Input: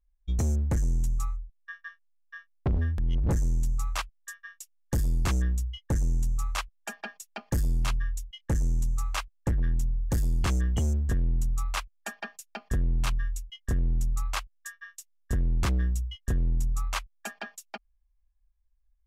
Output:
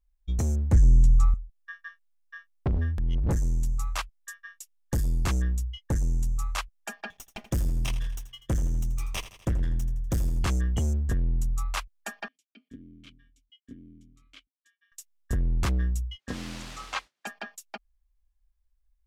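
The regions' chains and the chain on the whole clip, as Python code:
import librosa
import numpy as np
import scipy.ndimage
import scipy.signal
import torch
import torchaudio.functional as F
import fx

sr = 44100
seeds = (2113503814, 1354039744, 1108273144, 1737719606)

y = fx.chain(x, sr, fx.lowpass(hz=8300.0, slope=12),
    fx.low_shelf(hz=210.0, db=9.5),
    fx.band_squash(depth_pct=40), at=(0.72, 1.34))
y = fx.chain(y, sr, fx.lower_of_two(delay_ms=0.34),
    fx.echo_feedback(ms=82, feedback_pct=55, wet_db=-13.5), at=(7.1, 10.39))
y = fx.chain(y, sr, fx.vowel_filter(vowel='i'),
    fx.peak_eq(hz=2000.0, db=-9.0, octaves=0.62), at=(12.28, 14.92))
y = fx.chain(y, sr, fx.comb(ms=3.8, depth=0.48),
    fx.mod_noise(seeds[0], snr_db=16),
    fx.bandpass_edges(low_hz=150.0, high_hz=4800.0), at=(16.18, 17.27))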